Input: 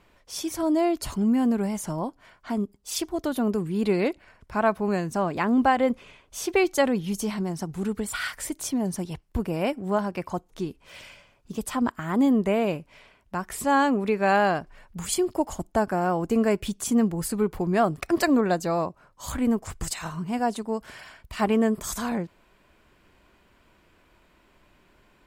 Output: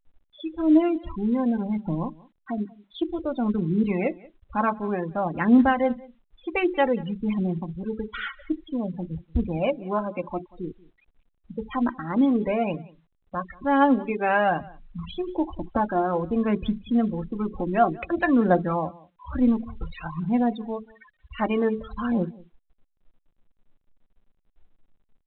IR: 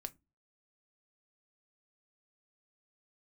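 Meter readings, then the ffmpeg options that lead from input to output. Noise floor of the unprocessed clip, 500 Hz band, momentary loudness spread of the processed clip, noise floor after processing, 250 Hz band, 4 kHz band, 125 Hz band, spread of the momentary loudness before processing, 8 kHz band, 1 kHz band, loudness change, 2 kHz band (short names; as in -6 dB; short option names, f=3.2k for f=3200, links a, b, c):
-62 dBFS, -1.0 dB, 14 LU, -72 dBFS, +1.5 dB, -6.5 dB, +0.5 dB, 13 LU, under -40 dB, +0.5 dB, +0.5 dB, -0.5 dB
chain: -filter_complex "[0:a]aphaser=in_gain=1:out_gain=1:delay=3.8:decay=0.46:speed=0.54:type=triangular[a];[1:a]atrim=start_sample=2205,asetrate=57330,aresample=44100[b];[a][b]afir=irnorm=-1:irlink=0,afftfilt=real='re*gte(hypot(re,im),0.0178)':imag='im*gte(hypot(re,im),0.0178)':win_size=1024:overlap=0.75,aecho=1:1:184:0.0708,volume=5dB" -ar 8000 -c:a pcm_alaw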